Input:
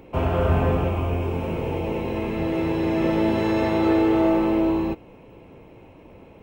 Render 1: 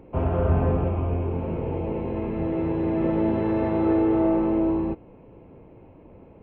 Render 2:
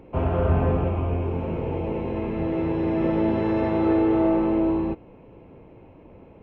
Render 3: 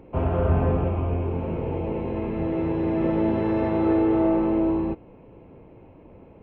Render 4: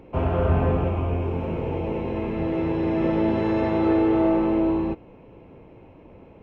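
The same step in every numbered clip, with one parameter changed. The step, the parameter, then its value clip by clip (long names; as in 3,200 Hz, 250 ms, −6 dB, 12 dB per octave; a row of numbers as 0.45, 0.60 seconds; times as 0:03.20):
head-to-tape spacing loss, at 10 kHz: 46, 29, 38, 20 decibels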